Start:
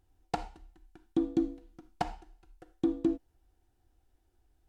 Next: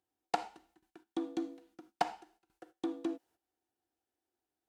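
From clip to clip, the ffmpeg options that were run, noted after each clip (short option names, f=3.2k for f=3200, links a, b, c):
-filter_complex "[0:a]agate=range=-12dB:threshold=-57dB:ratio=16:detection=peak,highpass=260,acrossover=split=550|1600[a][b][c];[a]alimiter=level_in=8dB:limit=-24dB:level=0:latency=1:release=465,volume=-8dB[d];[d][b][c]amix=inputs=3:normalize=0,volume=2dB"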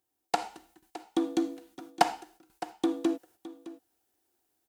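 -af "highshelf=f=7k:g=10.5,dynaudnorm=f=290:g=3:m=6.5dB,aecho=1:1:613:0.15,volume=2dB"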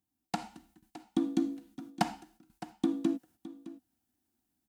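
-af "lowshelf=f=310:t=q:w=3:g=10,volume=-6dB"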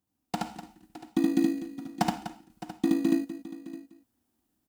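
-filter_complex "[0:a]aecho=1:1:72.89|247.8:0.794|0.251,asplit=2[a][b];[b]acrusher=samples=20:mix=1:aa=0.000001,volume=-8dB[c];[a][c]amix=inputs=2:normalize=0"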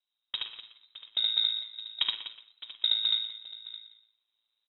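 -filter_complex "[0:a]asplit=2[a][b];[b]adelay=120,highpass=300,lowpass=3.4k,asoftclip=type=hard:threshold=-20.5dB,volume=-10dB[c];[a][c]amix=inputs=2:normalize=0,aeval=exprs='val(0)*sin(2*PI*55*n/s)':c=same,lowpass=f=3.4k:t=q:w=0.5098,lowpass=f=3.4k:t=q:w=0.6013,lowpass=f=3.4k:t=q:w=0.9,lowpass=f=3.4k:t=q:w=2.563,afreqshift=-4000"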